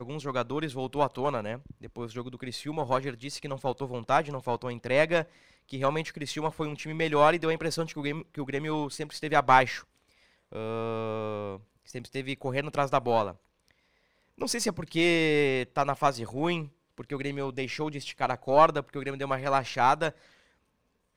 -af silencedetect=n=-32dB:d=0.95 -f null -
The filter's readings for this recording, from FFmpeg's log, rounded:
silence_start: 13.31
silence_end: 14.41 | silence_duration: 1.10
silence_start: 20.10
silence_end: 21.17 | silence_duration: 1.07